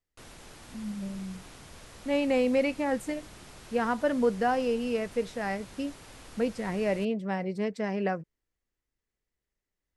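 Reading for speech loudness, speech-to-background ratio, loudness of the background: -30.0 LUFS, 19.0 dB, -49.0 LUFS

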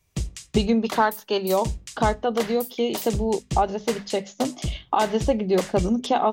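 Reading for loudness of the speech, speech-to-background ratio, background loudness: -24.5 LUFS, 9.0 dB, -33.5 LUFS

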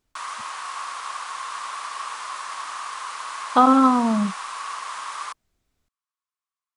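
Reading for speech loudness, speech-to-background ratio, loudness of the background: -18.5 LUFS, 13.5 dB, -32.0 LUFS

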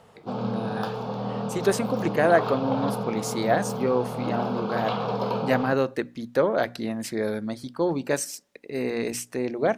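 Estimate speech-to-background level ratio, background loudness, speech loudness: 3.0 dB, -30.0 LUFS, -27.0 LUFS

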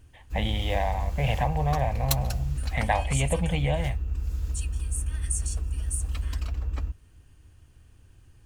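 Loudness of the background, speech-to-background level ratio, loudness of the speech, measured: -31.5 LUFS, 2.5 dB, -29.0 LUFS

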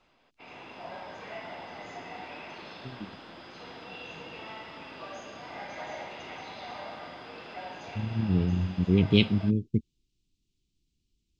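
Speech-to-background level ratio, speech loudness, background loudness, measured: 16.0 dB, -26.5 LUFS, -42.5 LUFS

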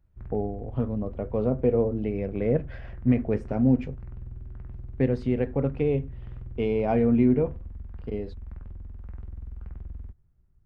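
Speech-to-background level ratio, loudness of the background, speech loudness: 15.5 dB, -42.0 LUFS, -26.5 LUFS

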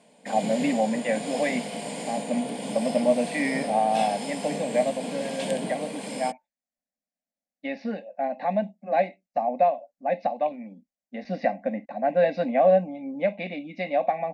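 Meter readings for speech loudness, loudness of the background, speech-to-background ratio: -27.0 LUFS, -33.5 LUFS, 6.5 dB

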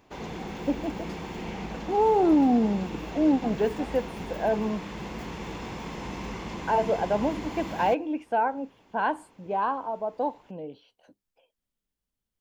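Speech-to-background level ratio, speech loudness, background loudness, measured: 10.0 dB, -27.0 LUFS, -37.0 LUFS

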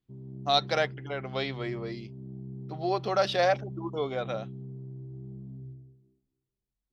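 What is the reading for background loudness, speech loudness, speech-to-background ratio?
-42.5 LUFS, -30.0 LUFS, 12.5 dB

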